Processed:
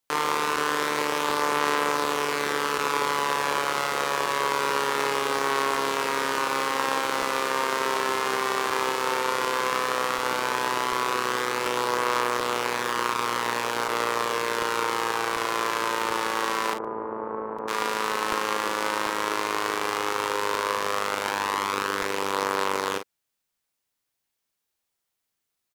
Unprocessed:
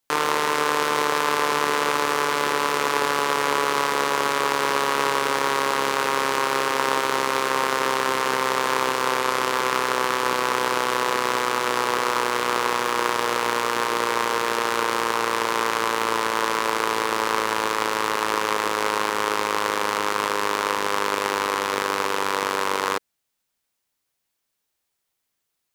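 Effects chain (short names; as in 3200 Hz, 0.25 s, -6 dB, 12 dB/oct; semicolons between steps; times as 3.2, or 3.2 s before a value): 16.73–17.68 Bessel low-pass 710 Hz, order 4; early reflections 41 ms -8.5 dB, 51 ms -12.5 dB; crackling interface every 0.74 s, samples 128, repeat, from 0.56; gain -4 dB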